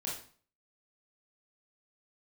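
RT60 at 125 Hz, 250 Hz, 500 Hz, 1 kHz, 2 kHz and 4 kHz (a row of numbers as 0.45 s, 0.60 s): 0.50 s, 0.50 s, 0.45 s, 0.45 s, 0.40 s, 0.40 s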